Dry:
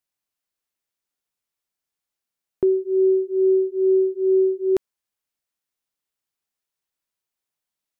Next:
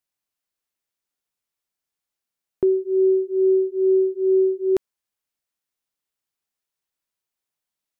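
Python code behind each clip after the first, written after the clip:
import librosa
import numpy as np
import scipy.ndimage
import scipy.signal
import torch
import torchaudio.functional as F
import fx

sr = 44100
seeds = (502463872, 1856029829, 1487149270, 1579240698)

y = x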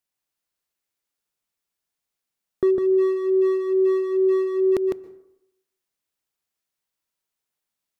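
y = np.clip(x, -10.0 ** (-14.5 / 20.0), 10.0 ** (-14.5 / 20.0))
y = y + 10.0 ** (-4.0 / 20.0) * np.pad(y, (int(154 * sr / 1000.0), 0))[:len(y)]
y = fx.rev_plate(y, sr, seeds[0], rt60_s=0.8, hf_ratio=0.5, predelay_ms=110, drr_db=17.0)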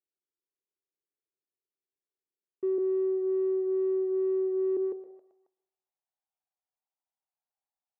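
y = fx.echo_feedback(x, sr, ms=271, feedback_pct=29, wet_db=-21.5)
y = fx.tube_stage(y, sr, drive_db=28.0, bias=0.35)
y = fx.filter_sweep_bandpass(y, sr, from_hz=380.0, to_hz=780.0, start_s=4.81, end_s=5.38, q=5.1)
y = F.gain(torch.from_numpy(y), 2.0).numpy()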